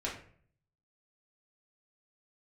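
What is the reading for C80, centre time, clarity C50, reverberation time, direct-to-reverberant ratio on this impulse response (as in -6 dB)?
10.5 dB, 30 ms, 6.5 dB, 0.55 s, -5.5 dB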